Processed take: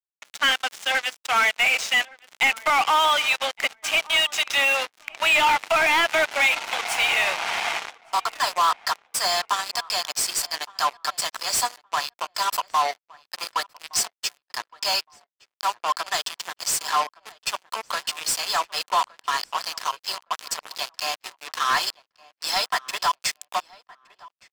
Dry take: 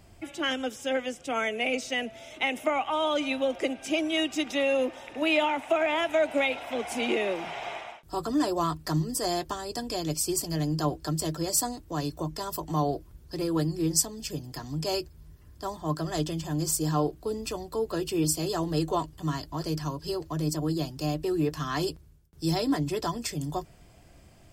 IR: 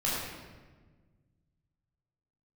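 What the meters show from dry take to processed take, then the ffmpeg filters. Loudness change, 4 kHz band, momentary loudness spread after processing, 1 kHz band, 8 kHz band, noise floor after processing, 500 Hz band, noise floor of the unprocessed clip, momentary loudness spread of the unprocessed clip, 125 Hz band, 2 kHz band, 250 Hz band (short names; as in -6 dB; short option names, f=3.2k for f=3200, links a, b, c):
+6.0 dB, +10.5 dB, 12 LU, +9.5 dB, +5.0 dB, under -85 dBFS, -3.5 dB, -54 dBFS, 9 LU, under -20 dB, +11.5 dB, -17.0 dB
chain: -filter_complex "[0:a]highpass=f=850:w=0.5412,highpass=f=850:w=1.3066,acrusher=bits=5:mix=0:aa=0.5,asplit=2[a][b];[b]highpass=f=720:p=1,volume=23dB,asoftclip=type=tanh:threshold=-9dB[c];[a][c]amix=inputs=2:normalize=0,lowpass=f=3.8k:p=1,volume=-6dB,asplit=2[d][e];[e]adelay=1166,lowpass=f=2.1k:p=1,volume=-22dB,asplit=2[f][g];[g]adelay=1166,lowpass=f=2.1k:p=1,volume=0.21[h];[f][h]amix=inputs=2:normalize=0[i];[d][i]amix=inputs=2:normalize=0"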